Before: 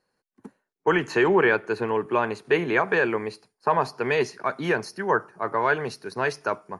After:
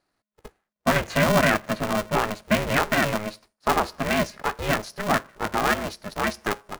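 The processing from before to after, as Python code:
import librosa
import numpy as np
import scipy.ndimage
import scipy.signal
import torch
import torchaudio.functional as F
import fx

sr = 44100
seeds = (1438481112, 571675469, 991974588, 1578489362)

y = x * np.sign(np.sin(2.0 * np.pi * 210.0 * np.arange(len(x)) / sr))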